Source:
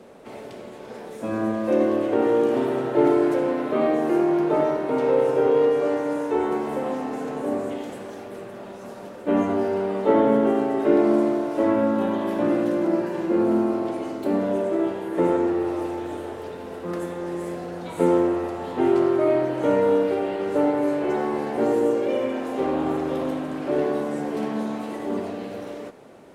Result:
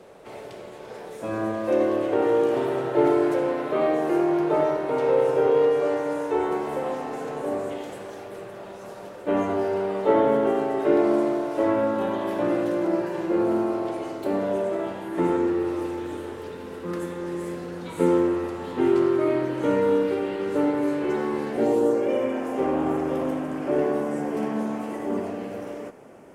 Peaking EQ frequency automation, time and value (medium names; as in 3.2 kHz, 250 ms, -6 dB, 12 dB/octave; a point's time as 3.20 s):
peaking EQ -10.5 dB 0.45 oct
14.53 s 240 Hz
15.47 s 690 Hz
21.48 s 690 Hz
22.03 s 3.9 kHz